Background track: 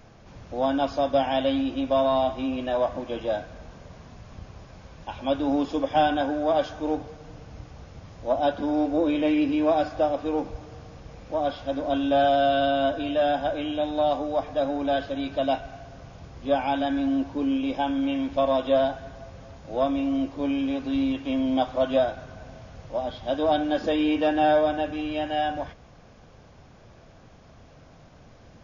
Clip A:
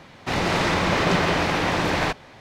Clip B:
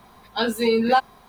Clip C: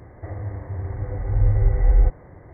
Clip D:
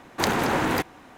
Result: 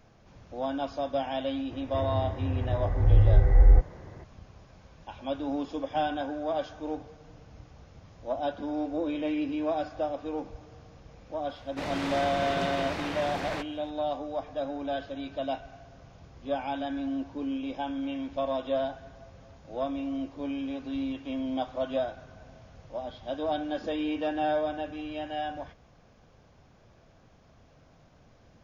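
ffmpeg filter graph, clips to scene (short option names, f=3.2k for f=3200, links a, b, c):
-filter_complex "[0:a]volume=-7.5dB[a];[3:a]atrim=end=2.53,asetpts=PTS-STARTPTS,volume=-1dB,afade=t=in:d=0.004:c=hsin,afade=t=out:st=2.526:d=0.004:c=hsin,adelay=1710[b];[1:a]atrim=end=2.4,asetpts=PTS-STARTPTS,volume=-12.5dB,afade=t=in:d=0.004:c=hsin,afade=t=out:st=2.396:d=0.004:c=hsin,adelay=11500[c];[a][b][c]amix=inputs=3:normalize=0"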